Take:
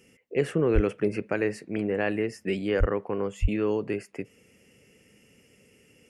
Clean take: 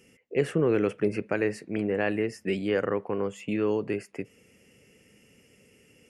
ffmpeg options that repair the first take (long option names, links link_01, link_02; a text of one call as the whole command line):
ffmpeg -i in.wav -filter_complex "[0:a]asplit=3[link_01][link_02][link_03];[link_01]afade=type=out:start_time=0.74:duration=0.02[link_04];[link_02]highpass=frequency=140:width=0.5412,highpass=frequency=140:width=1.3066,afade=type=in:start_time=0.74:duration=0.02,afade=type=out:start_time=0.86:duration=0.02[link_05];[link_03]afade=type=in:start_time=0.86:duration=0.02[link_06];[link_04][link_05][link_06]amix=inputs=3:normalize=0,asplit=3[link_07][link_08][link_09];[link_07]afade=type=out:start_time=2.79:duration=0.02[link_10];[link_08]highpass=frequency=140:width=0.5412,highpass=frequency=140:width=1.3066,afade=type=in:start_time=2.79:duration=0.02,afade=type=out:start_time=2.91:duration=0.02[link_11];[link_09]afade=type=in:start_time=2.91:duration=0.02[link_12];[link_10][link_11][link_12]amix=inputs=3:normalize=0,asplit=3[link_13][link_14][link_15];[link_13]afade=type=out:start_time=3.41:duration=0.02[link_16];[link_14]highpass=frequency=140:width=0.5412,highpass=frequency=140:width=1.3066,afade=type=in:start_time=3.41:duration=0.02,afade=type=out:start_time=3.53:duration=0.02[link_17];[link_15]afade=type=in:start_time=3.53:duration=0.02[link_18];[link_16][link_17][link_18]amix=inputs=3:normalize=0" out.wav